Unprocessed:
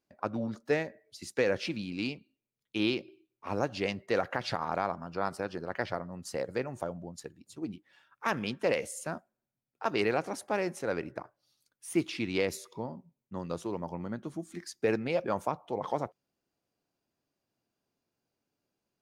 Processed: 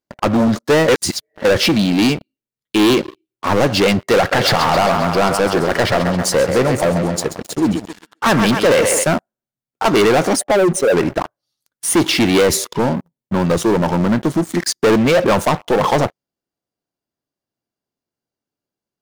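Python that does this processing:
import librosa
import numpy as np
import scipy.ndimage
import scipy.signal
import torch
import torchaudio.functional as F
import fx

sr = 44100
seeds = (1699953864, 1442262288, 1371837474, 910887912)

y = fx.echo_thinned(x, sr, ms=133, feedback_pct=61, hz=230.0, wet_db=-11.0, at=(4.31, 9.03), fade=0.02)
y = fx.spec_expand(y, sr, power=2.3, at=(10.35, 10.95), fade=0.02)
y = fx.edit(y, sr, fx.reverse_span(start_s=0.88, length_s=0.57), tone=tone)
y = fx.notch(y, sr, hz=2500.0, q=10.0)
y = fx.leveller(y, sr, passes=5)
y = y * 10.0 ** (7.0 / 20.0)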